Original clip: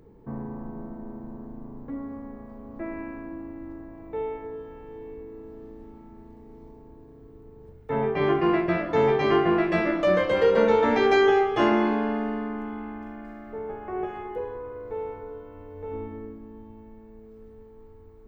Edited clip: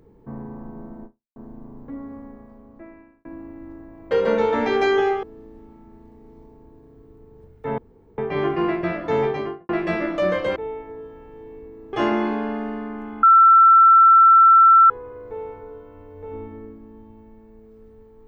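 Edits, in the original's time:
1.05–1.36 fade out exponential
2.2–3.25 fade out linear
4.11–5.48 swap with 10.41–11.53
8.03 insert room tone 0.40 s
9.06–9.54 studio fade out
12.83–14.5 bleep 1340 Hz -8 dBFS

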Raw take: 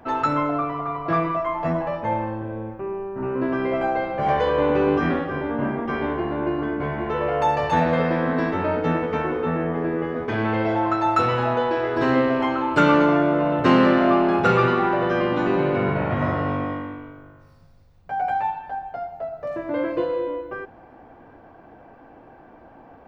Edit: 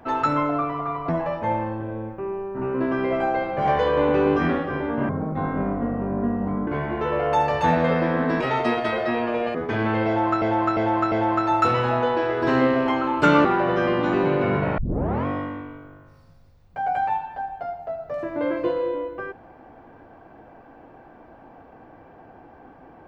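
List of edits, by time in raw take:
1.09–1.7 cut
5.7–6.76 speed 67%
8.49–10.14 speed 144%
10.66–11.01 loop, 4 plays
12.99–14.78 cut
16.11 tape start 0.48 s

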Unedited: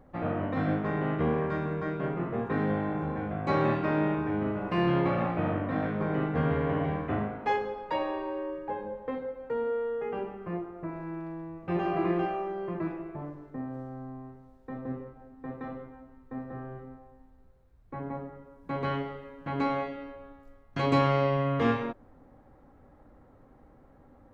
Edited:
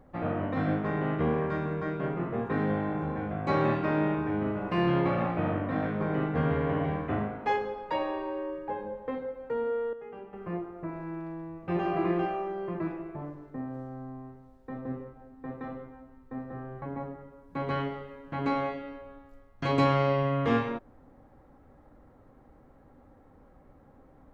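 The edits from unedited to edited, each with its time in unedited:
9.93–10.33 gain -10 dB
16.82–17.96 cut

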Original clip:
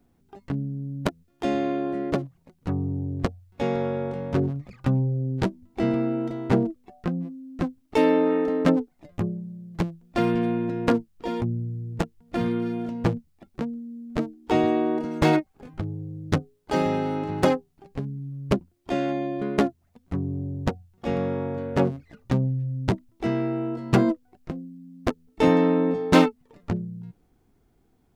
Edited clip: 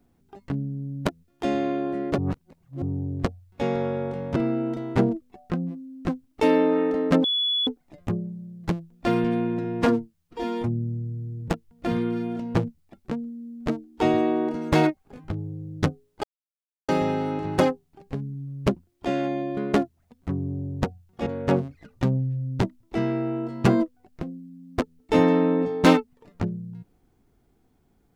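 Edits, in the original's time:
2.18–2.82 reverse
4.36–5.9 cut
8.78 add tone 3410 Hz -21 dBFS 0.43 s
10.75–11.98 stretch 1.5×
16.73 insert silence 0.65 s
21.11–21.55 cut

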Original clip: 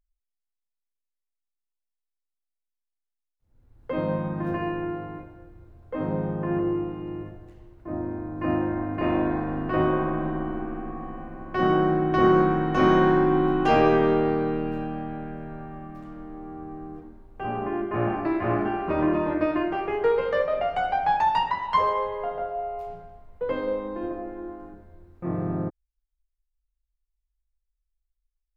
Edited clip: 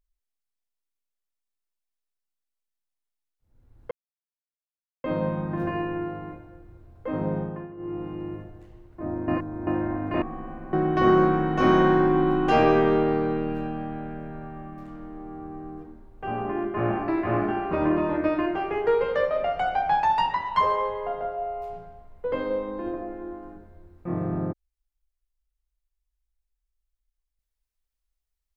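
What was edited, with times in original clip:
3.91 insert silence 1.13 s
6.25–6.94 dip -16.5 dB, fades 0.30 s
8.15–8.54 reverse
9.09–10.92 cut
11.43–11.9 cut

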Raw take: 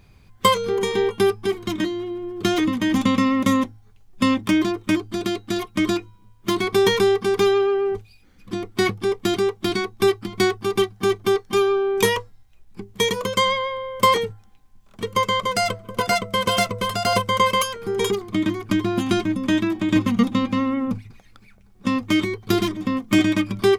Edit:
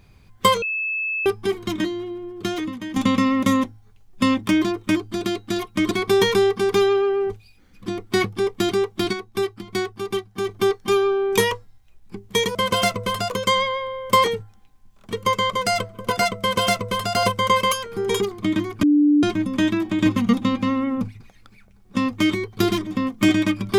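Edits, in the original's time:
0.62–1.26 bleep 2610 Hz -22 dBFS
1.81–2.96 fade out, to -12.5 dB
5.91–6.56 cut
9.78–11.14 gain -5.5 dB
16.3–17.05 copy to 13.2
18.73–19.13 bleep 294 Hz -12 dBFS

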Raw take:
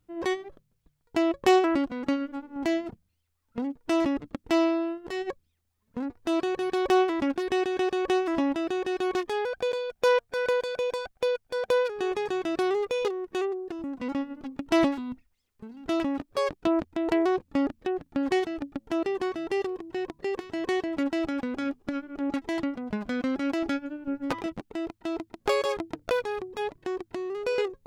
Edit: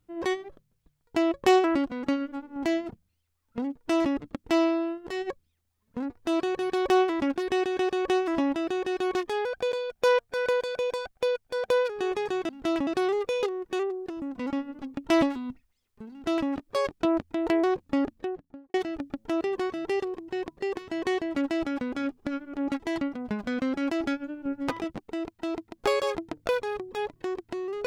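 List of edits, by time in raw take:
15.73–16.11 copy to 12.49
17.64–18.36 studio fade out

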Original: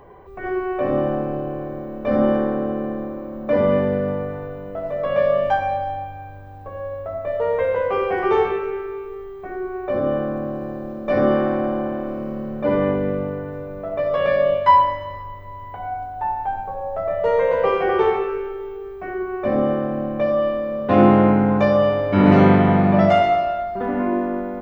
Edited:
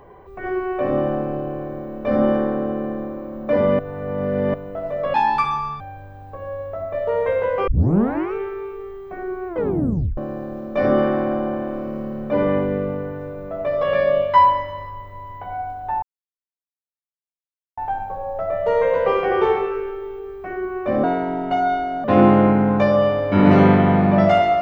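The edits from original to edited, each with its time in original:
3.79–4.54 reverse
5.14–6.13 speed 149%
8 tape start 0.66 s
9.8 tape stop 0.70 s
16.35 insert silence 1.75 s
19.61–20.85 speed 123%

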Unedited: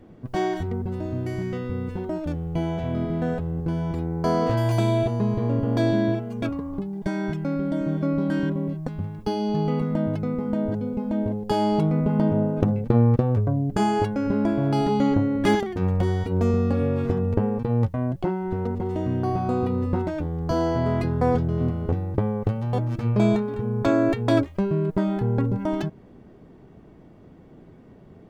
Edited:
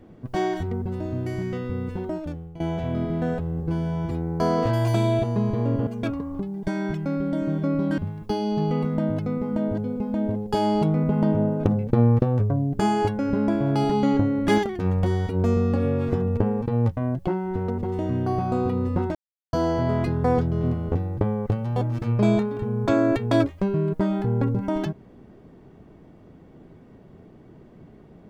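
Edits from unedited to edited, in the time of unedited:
2.07–2.6 fade out, to -18 dB
3.63–3.95 stretch 1.5×
5.71–6.26 cut
8.37–8.95 cut
20.12–20.5 mute

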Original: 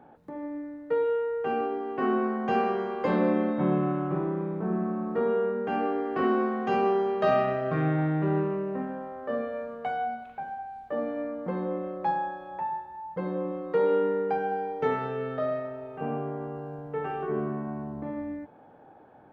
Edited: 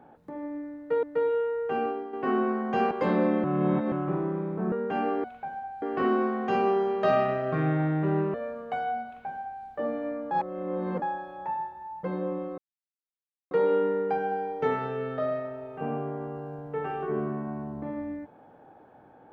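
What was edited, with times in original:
0.78–1.03 loop, 2 plays
1.59–1.88 fade out, to -7.5 dB
2.66–2.94 cut
3.47–3.95 reverse
4.75–5.49 cut
8.53–9.47 cut
10.19–10.77 copy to 6.01
11.44–12.15 reverse
13.71 insert silence 0.93 s

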